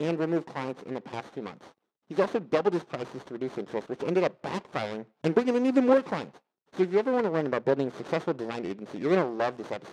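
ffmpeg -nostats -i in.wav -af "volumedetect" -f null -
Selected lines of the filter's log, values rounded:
mean_volume: -28.7 dB
max_volume: -7.9 dB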